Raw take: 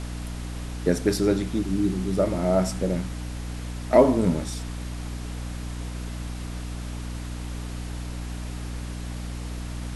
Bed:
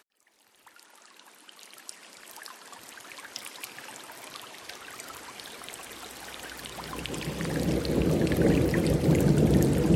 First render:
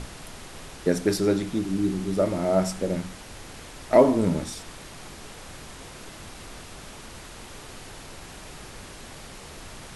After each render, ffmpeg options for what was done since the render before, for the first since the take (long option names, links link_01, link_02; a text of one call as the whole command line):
ffmpeg -i in.wav -af "bandreject=frequency=60:width_type=h:width=6,bandreject=frequency=120:width_type=h:width=6,bandreject=frequency=180:width_type=h:width=6,bandreject=frequency=240:width_type=h:width=6,bandreject=frequency=300:width_type=h:width=6" out.wav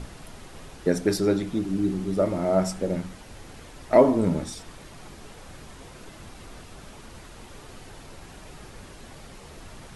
ffmpeg -i in.wav -af "afftdn=noise_reduction=6:noise_floor=-43" out.wav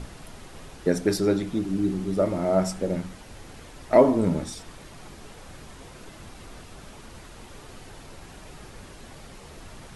ffmpeg -i in.wav -af anull out.wav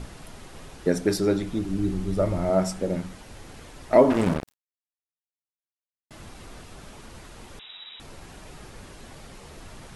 ffmpeg -i in.wav -filter_complex "[0:a]asettb=1/sr,asplit=3[link_01][link_02][link_03];[link_01]atrim=end=1.204[link_04];[link_02]atrim=start=1.2:end=2.5,asetpts=PTS-STARTPTS,afade=type=in:duration=0.004:curve=qsin,afade=type=out:start_time=1.296:duration=0.004:curve=qsin,asubboost=boost=11.5:cutoff=110[link_05];[link_03]atrim=start=2.496[link_06];[link_04][link_05]acrossfade=duration=0.004:curve1=hsin:curve2=qsin[link_07];[link_07][link_06]acrossfade=duration=0.004:curve1=qsin:curve2=hsin,asettb=1/sr,asplit=3[link_08][link_09][link_10];[link_08]atrim=end=4.104[link_11];[link_09]atrim=start=4.1:end=6.11,asetpts=PTS-STARTPTS,afade=type=in:duration=0.004:curve=qsin,afade=type=out:start_time=2.006:duration=0.004:curve=qsin,acrusher=bits=3:mix=0:aa=0.5[link_12];[link_10]atrim=start=6.106[link_13];[link_11][link_12]acrossfade=duration=0.004:curve1=hsin:curve2=qsin[link_14];[link_14][link_13]acrossfade=duration=0.004:curve1=qsin:curve2=hsin,asettb=1/sr,asplit=3[link_15][link_16][link_17];[link_15]atrim=end=7.594[link_18];[link_16]atrim=start=7.59:end=8,asetpts=PTS-STARTPTS,afade=type=in:duration=0.004:curve=qsin,afade=type=out:start_time=0.406:duration=0.004:curve=qsin,lowpass=frequency=3300:width_type=q:width=0.5098,lowpass=frequency=3300:width_type=q:width=0.6013,lowpass=frequency=3300:width_type=q:width=0.9,lowpass=frequency=3300:width_type=q:width=2.563,afreqshift=-3900[link_19];[link_17]atrim=start=7.996[link_20];[link_18][link_19]acrossfade=duration=0.004:curve1=hsin:curve2=qsin[link_21];[link_21][link_20]acrossfade=duration=0.004:curve1=qsin:curve2=hsin" out.wav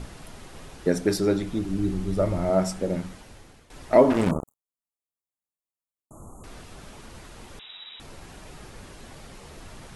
ffmpeg -i in.wav -filter_complex "[0:a]asettb=1/sr,asplit=3[link_01][link_02][link_03];[link_01]atrim=end=4.314[link_04];[link_02]atrim=start=4.31:end=6.44,asetpts=PTS-STARTPTS,afade=type=in:duration=0.004:curve=qsin,afade=type=out:start_time=2.126:duration=0.004:curve=qsin,asuperstop=centerf=3000:order=20:qfactor=0.56[link_05];[link_03]atrim=start=6.436[link_06];[link_04][link_05]acrossfade=duration=0.004:curve1=hsin:curve2=qsin[link_07];[link_07][link_06]acrossfade=duration=0.004:curve1=qsin:curve2=hsin,asplit=2[link_08][link_09];[link_08]atrim=end=3.7,asetpts=PTS-STARTPTS,afade=type=out:start_time=3.08:duration=0.62:silence=0.177828[link_10];[link_09]atrim=start=3.7,asetpts=PTS-STARTPTS,afade=type=in:duration=0.004:curve=hsin:silence=0.177828[link_11];[link_10][link_11]concat=n=2:v=0:a=1" out.wav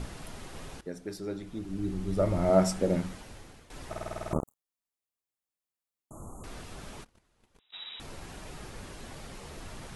ffmpeg -i in.wav -filter_complex "[0:a]asplit=3[link_01][link_02][link_03];[link_01]afade=type=out:start_time=7.03:duration=0.02[link_04];[link_02]agate=range=-27dB:threshold=-40dB:ratio=16:release=100:detection=peak,afade=type=in:start_time=7.03:duration=0.02,afade=type=out:start_time=7.72:duration=0.02[link_05];[link_03]afade=type=in:start_time=7.72:duration=0.02[link_06];[link_04][link_05][link_06]amix=inputs=3:normalize=0,asplit=11[link_07][link_08][link_09][link_10][link_11][link_12][link_13][link_14][link_15][link_16][link_17];[link_07]atrim=end=0.81,asetpts=PTS-STARTPTS,afade=type=out:start_time=0.806:duration=0.004:curve=hsin:silence=0.141254[link_18];[link_08]atrim=start=0.81:end=3.932,asetpts=PTS-STARTPTS,afade=type=in:duration=1.75:curve=qua:silence=0.141254[link_19];[link_09]atrim=start=3.878:end=3.932[link_20];[link_10]atrim=start=3.878:end=3.932[link_21];[link_11]atrim=start=3.878:end=3.932[link_22];[link_12]atrim=start=3.878:end=3.932[link_23];[link_13]atrim=start=3.878:end=3.932[link_24];[link_14]atrim=start=3.878:end=3.932[link_25];[link_15]atrim=start=3.878:end=3.932[link_26];[link_16]atrim=start=3.878:end=3.932[link_27];[link_17]atrim=start=4.328[link_28];[link_18][link_19]concat=n=2:v=0:a=1[link_29];[link_29][link_20]acrossfade=duration=0.004:curve1=hsin:curve2=hsin[link_30];[link_30][link_21]acrossfade=duration=0.004:curve1=hsin:curve2=hsin[link_31];[link_31][link_22]acrossfade=duration=0.004:curve1=hsin:curve2=hsin[link_32];[link_32][link_23]acrossfade=duration=0.004:curve1=hsin:curve2=hsin[link_33];[link_33][link_24]acrossfade=duration=0.004:curve1=hsin:curve2=hsin[link_34];[link_34][link_25]acrossfade=duration=0.004:curve1=hsin:curve2=hsin[link_35];[link_35][link_26]acrossfade=duration=0.004:curve1=hsin:curve2=hsin[link_36];[link_36][link_27]acrossfade=duration=0.004:curve1=hsin:curve2=hsin[link_37];[link_37][link_28]acrossfade=duration=0.004:curve1=hsin:curve2=hsin" out.wav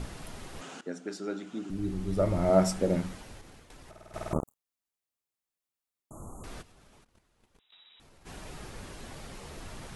ffmpeg -i in.wav -filter_complex "[0:a]asettb=1/sr,asplit=3[link_01][link_02][link_03];[link_01]atrim=end=0.614[link_04];[link_02]atrim=start=0.61:end=1.7,asetpts=PTS-STARTPTS,afade=type=in:duration=0.004:curve=qsin,afade=type=out:start_time=1.086:duration=0.004:curve=qsin,highpass=frequency=180:width=0.5412,highpass=frequency=180:width=1.3066,equalizer=frequency=250:width_type=q:width=4:gain=5,equalizer=frequency=740:width_type=q:width=4:gain=4,equalizer=frequency=1400:width_type=q:width=4:gain=9,equalizer=frequency=2900:width_type=q:width=4:gain=6,equalizer=frequency=6900:width_type=q:width=4:gain=6,lowpass=frequency=9000:width=0.5412,lowpass=frequency=9000:width=1.3066[link_05];[link_03]atrim=start=1.696[link_06];[link_04][link_05]acrossfade=duration=0.004:curve1=hsin:curve2=qsin[link_07];[link_07][link_06]acrossfade=duration=0.004:curve1=qsin:curve2=hsin,asettb=1/sr,asplit=3[link_08][link_09][link_10];[link_08]atrim=end=3.414[link_11];[link_09]atrim=start=3.41:end=4.14,asetpts=PTS-STARTPTS,afade=type=in:duration=0.004:curve=qsin,afade=type=out:start_time=0.726:duration=0.004:curve=qsin,acompressor=threshold=-46dB:ratio=16:attack=3.2:release=140:knee=1:detection=peak[link_12];[link_10]atrim=start=4.136[link_13];[link_11][link_12]acrossfade=duration=0.004:curve1=hsin:curve2=qsin[link_14];[link_14][link_13]acrossfade=duration=0.004:curve1=qsin:curve2=hsin,asplit=3[link_15][link_16][link_17];[link_15]afade=type=out:start_time=6.61:duration=0.02[link_18];[link_16]acompressor=threshold=-56dB:ratio=6:attack=3.2:release=140:knee=1:detection=peak,afade=type=in:start_time=6.61:duration=0.02,afade=type=out:start_time=8.25:duration=0.02[link_19];[link_17]afade=type=in:start_time=8.25:duration=0.02[link_20];[link_18][link_19][link_20]amix=inputs=3:normalize=0" out.wav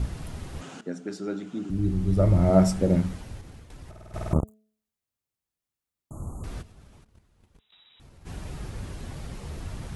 ffmpeg -i in.wav -af "equalizer=frequency=74:width=0.4:gain=13,bandreject=frequency=215.3:width_type=h:width=4,bandreject=frequency=430.6:width_type=h:width=4,bandreject=frequency=645.9:width_type=h:width=4" out.wav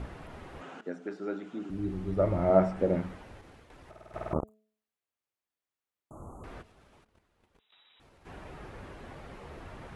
ffmpeg -i in.wav -filter_complex "[0:a]acrossover=split=2600[link_01][link_02];[link_02]acompressor=threshold=-58dB:ratio=4:attack=1:release=60[link_03];[link_01][link_03]amix=inputs=2:normalize=0,bass=frequency=250:gain=-13,treble=frequency=4000:gain=-9" out.wav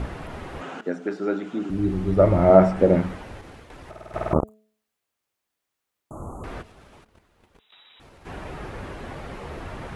ffmpeg -i in.wav -af "volume=10dB,alimiter=limit=-1dB:level=0:latency=1" out.wav